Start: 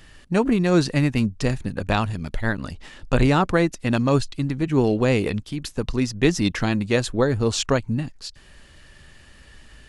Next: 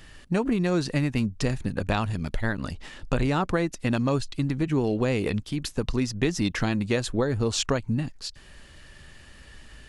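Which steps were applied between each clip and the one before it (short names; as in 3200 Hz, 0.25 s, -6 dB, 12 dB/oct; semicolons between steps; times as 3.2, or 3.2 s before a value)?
compressor 4:1, threshold -21 dBFS, peak gain reduction 8 dB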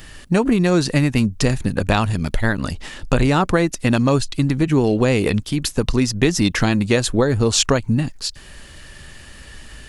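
high shelf 8000 Hz +8 dB; gain +8 dB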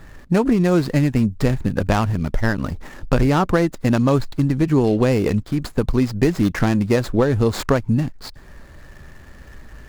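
median filter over 15 samples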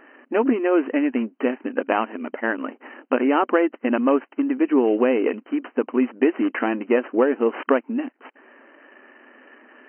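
brick-wall FIR band-pass 230–3100 Hz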